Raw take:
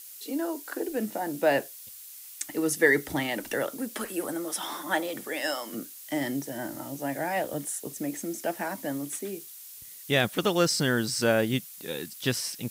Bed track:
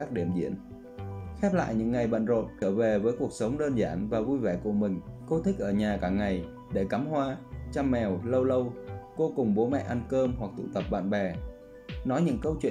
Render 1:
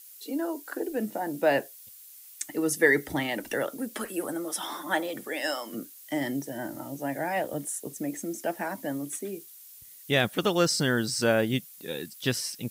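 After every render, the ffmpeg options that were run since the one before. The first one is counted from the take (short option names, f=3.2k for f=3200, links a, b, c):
-af "afftdn=nr=6:nf=-46"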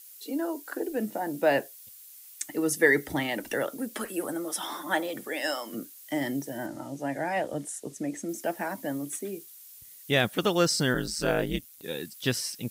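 -filter_complex "[0:a]asettb=1/sr,asplit=3[a][b][c];[a]atrim=end=6.664[d];[b]atrim=start=6.66:end=8.29,asetpts=PTS-STARTPTS,afade=t=in:d=0.004:c=qsin,afade=t=out:st=1.626:d=0.004:c=qsin,lowpass=8.5k[e];[c]atrim=start=8.286[f];[d][e]acrossfade=d=0.004:c1=hsin:c2=qsin[g];[g][f]acrossfade=d=0.004:c1=qsin:c2=hsin,asplit=3[h][i][j];[h]afade=t=out:st=10.93:d=0.02[k];[i]aeval=exprs='val(0)*sin(2*PI*80*n/s)':c=same,afade=t=in:st=10.93:d=0.02,afade=t=out:st=11.82:d=0.02[l];[j]afade=t=in:st=11.82:d=0.02[m];[k][l][m]amix=inputs=3:normalize=0"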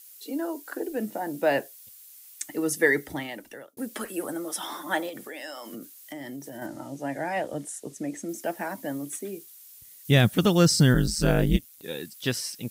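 -filter_complex "[0:a]asettb=1/sr,asplit=3[a][b][c];[a]atrim=end=5.094[d];[b]atrim=start=5.09:end=6.62,asetpts=PTS-STARTPTS,afade=t=in:d=0.004:c=qsin,afade=t=out:st=1.526:d=0.004:c=qsin,acompressor=threshold=-35dB:ratio=5:attack=3.2:release=140:knee=1:detection=peak[e];[c]atrim=start=6.616[f];[d][e]acrossfade=d=0.004:c1=hsin:c2=qsin[g];[g][f]acrossfade=d=0.004:c1=qsin:c2=hsin,asettb=1/sr,asplit=3[h][i][j];[h]atrim=end=10.054[k];[i]atrim=start=10.05:end=11.57,asetpts=PTS-STARTPTS,afade=t=in:d=0.004:c=qsin,afade=t=out:st=1.516:d=0.004:c=qsin,bass=f=250:g=14,treble=f=4k:g=4[l];[j]atrim=start=11.566[m];[k][l]acrossfade=d=0.004:c1=hsin:c2=qsin[n];[n][m]acrossfade=d=0.004:c1=qsin:c2=hsin,asplit=2[o][p];[o]atrim=end=3.77,asetpts=PTS-STARTPTS,afade=t=out:st=2.84:d=0.93[q];[p]atrim=start=3.77,asetpts=PTS-STARTPTS,afade=t=in:d=0.004:c=hsin[r];[q][r]concat=n=2:v=0:a=1"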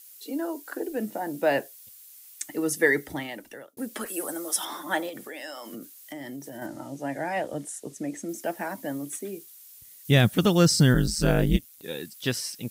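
-filter_complex "[0:a]asettb=1/sr,asplit=3[a][b][c];[a]atrim=end=4.064[d];[b]atrim=start=4.06:end=4.65,asetpts=PTS-STARTPTS,afade=t=in:d=0.004:c=qsin,afade=t=out:st=0.586:d=0.004:c=qsin,bass=f=250:g=-9,treble=f=4k:g=7[e];[c]atrim=start=4.646[f];[d][e]acrossfade=d=0.004:c1=hsin:c2=qsin[g];[g][f]acrossfade=d=0.004:c1=qsin:c2=hsin"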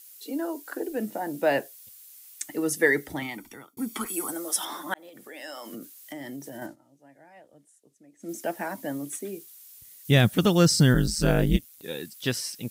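-filter_complex "[0:a]asettb=1/sr,asplit=3[a][b][c];[a]atrim=end=3.224[d];[b]atrim=start=3.22:end=4.31,asetpts=PTS-STARTPTS,afade=t=in:d=0.004:c=qsin,afade=t=out:st=1.086:d=0.004:c=qsin,aecho=1:1:0.9:0.84,atrim=end_sample=48069[e];[c]atrim=start=4.306[f];[d][e]acrossfade=d=0.004:c1=hsin:c2=qsin[g];[g][f]acrossfade=d=0.004:c1=qsin:c2=hsin,asplit=4[h][i][j][k];[h]atrim=end=4.94,asetpts=PTS-STARTPTS,afade=t=out:st=4.936:d=0.004:c=hsin[l];[i]atrim=start=4.94:end=6.76,asetpts=PTS-STARTPTS,afade=t=in:d=0.6,afade=t=out:st=1.64:d=0.18:c=qsin:silence=0.0707946[m];[j]atrim=start=6.76:end=8.19,asetpts=PTS-STARTPTS,volume=-23dB[n];[k]atrim=start=8.19,asetpts=PTS-STARTPTS,afade=t=in:d=0.18:c=qsin:silence=0.0707946[o];[l][m][n][o]concat=n=4:v=0:a=1"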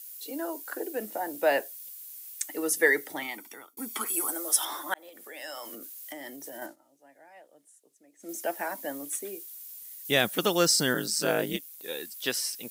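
-af "highpass=400,highshelf=f=12k:g=9"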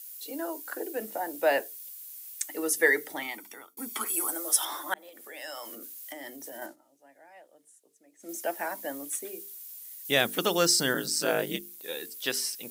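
-af "lowshelf=f=130:g=-5,bandreject=f=50:t=h:w=6,bandreject=f=100:t=h:w=6,bandreject=f=150:t=h:w=6,bandreject=f=200:t=h:w=6,bandreject=f=250:t=h:w=6,bandreject=f=300:t=h:w=6,bandreject=f=350:t=h:w=6,bandreject=f=400:t=h:w=6,bandreject=f=450:t=h:w=6"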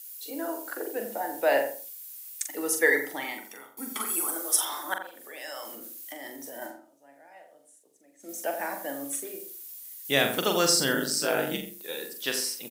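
-filter_complex "[0:a]asplit=2[a][b];[b]adelay=43,volume=-6.5dB[c];[a][c]amix=inputs=2:normalize=0,asplit=2[d][e];[e]adelay=86,lowpass=f=1.3k:p=1,volume=-6.5dB,asplit=2[f][g];[g]adelay=86,lowpass=f=1.3k:p=1,volume=0.27,asplit=2[h][i];[i]adelay=86,lowpass=f=1.3k:p=1,volume=0.27[j];[f][h][j]amix=inputs=3:normalize=0[k];[d][k]amix=inputs=2:normalize=0"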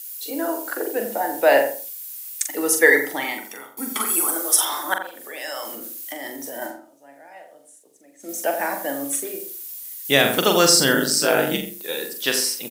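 -af "volume=8dB,alimiter=limit=-2dB:level=0:latency=1"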